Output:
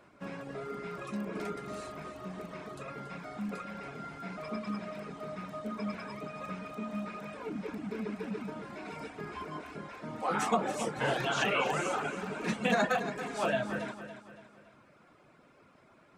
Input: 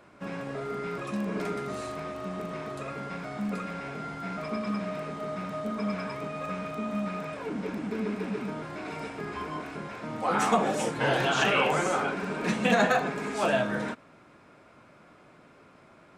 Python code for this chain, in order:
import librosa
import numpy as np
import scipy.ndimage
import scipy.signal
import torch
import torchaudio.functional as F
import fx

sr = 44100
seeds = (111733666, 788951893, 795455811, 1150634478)

p1 = fx.dereverb_blind(x, sr, rt60_s=0.89)
p2 = p1 + fx.echo_feedback(p1, sr, ms=281, feedback_pct=43, wet_db=-11, dry=0)
y = p2 * librosa.db_to_amplitude(-4.0)